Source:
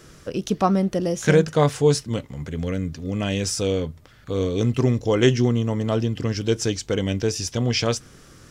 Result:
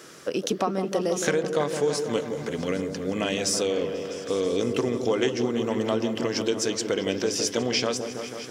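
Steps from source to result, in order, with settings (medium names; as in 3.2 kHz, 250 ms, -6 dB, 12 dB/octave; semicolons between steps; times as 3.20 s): high-pass 300 Hz 12 dB/octave; compression 6:1, threshold -26 dBFS, peak gain reduction 12.5 dB; delay with an opening low-pass 163 ms, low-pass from 750 Hz, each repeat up 1 oct, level -6 dB; trim +4 dB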